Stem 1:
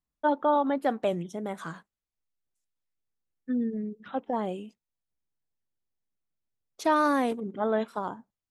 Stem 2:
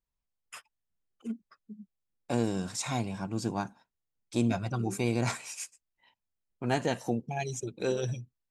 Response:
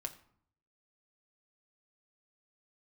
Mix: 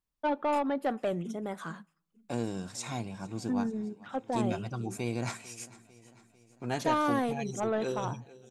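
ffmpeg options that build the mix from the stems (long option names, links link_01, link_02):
-filter_complex "[0:a]asoftclip=type=tanh:threshold=-20.5dB,volume=-3dB,asplit=2[link_01][link_02];[link_02]volume=-13dB[link_03];[1:a]volume=-4.5dB,asplit=2[link_04][link_05];[link_05]volume=-20dB[link_06];[2:a]atrim=start_sample=2205[link_07];[link_03][link_07]afir=irnorm=-1:irlink=0[link_08];[link_06]aecho=0:1:448|896|1344|1792|2240|2688|3136|3584:1|0.56|0.314|0.176|0.0983|0.0551|0.0308|0.0173[link_09];[link_01][link_04][link_08][link_09]amix=inputs=4:normalize=0"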